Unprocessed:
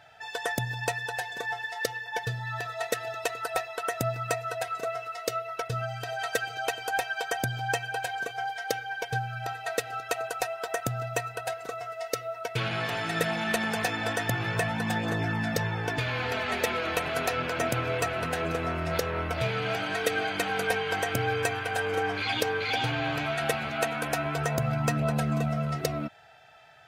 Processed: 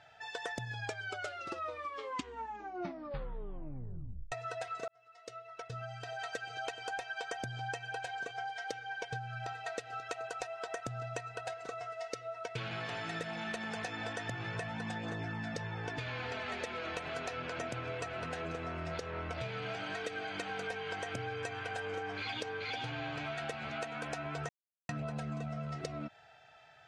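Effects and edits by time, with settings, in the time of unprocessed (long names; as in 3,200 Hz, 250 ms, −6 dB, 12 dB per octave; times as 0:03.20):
0:00.59: tape stop 3.73 s
0:04.88–0:06.64: fade in
0:24.49–0:24.89: silence
whole clip: low-pass filter 7,900 Hz 24 dB per octave; downward compressor, threshold −31 dBFS; level −5 dB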